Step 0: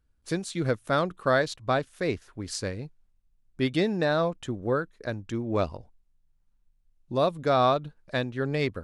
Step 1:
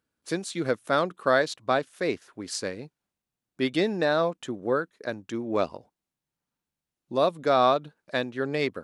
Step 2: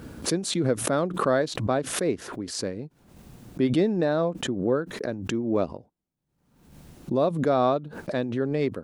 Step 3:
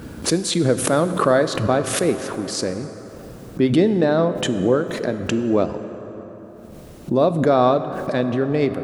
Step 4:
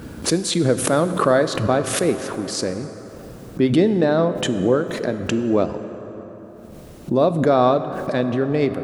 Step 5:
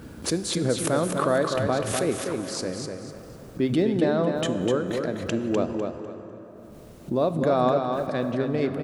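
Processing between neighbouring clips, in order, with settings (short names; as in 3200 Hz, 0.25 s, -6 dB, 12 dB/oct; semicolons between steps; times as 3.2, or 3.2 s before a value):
HPF 220 Hz 12 dB/oct; gain +1.5 dB
tilt shelf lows +7.5 dB, about 680 Hz; backwards sustainer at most 64 dB/s; gain -1.5 dB
plate-style reverb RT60 4.6 s, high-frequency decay 0.45×, DRR 9.5 dB; gain +6 dB
nothing audible
feedback echo 0.25 s, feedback 27%, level -5.5 dB; gain -6.5 dB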